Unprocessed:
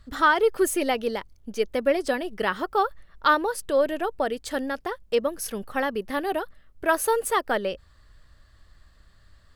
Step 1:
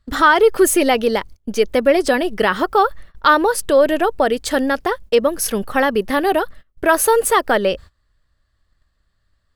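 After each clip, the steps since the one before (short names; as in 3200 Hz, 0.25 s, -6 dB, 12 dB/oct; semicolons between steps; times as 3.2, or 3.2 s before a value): gate -45 dBFS, range -22 dB; in parallel at +2.5 dB: limiter -19.5 dBFS, peak gain reduction 11.5 dB; on the sum: gain +4 dB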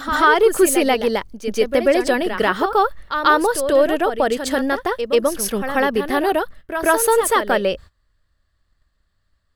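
reverse echo 0.138 s -8.5 dB; gain -2 dB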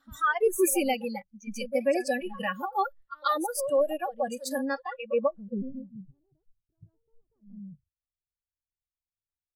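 low-pass sweep 15000 Hz -> 130 Hz, 4.48–5.88; spectral noise reduction 29 dB; gain -9 dB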